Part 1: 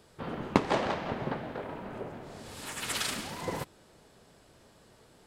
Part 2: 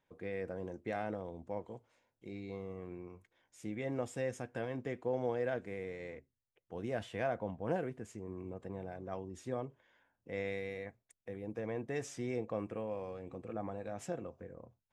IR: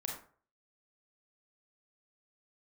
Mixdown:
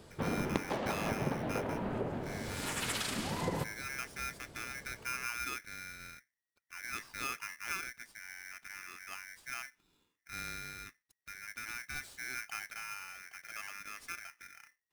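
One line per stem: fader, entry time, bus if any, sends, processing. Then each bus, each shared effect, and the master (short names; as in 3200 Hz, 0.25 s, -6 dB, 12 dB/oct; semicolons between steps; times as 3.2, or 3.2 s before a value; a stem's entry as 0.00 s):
+0.5 dB, 0.00 s, send -12.5 dB, compressor 10:1, threshold -35 dBFS, peak gain reduction 18.5 dB
-4.5 dB, 0.00 s, no send, polarity switched at an audio rate 1900 Hz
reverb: on, RT60 0.45 s, pre-delay 27 ms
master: low shelf 400 Hz +5.5 dB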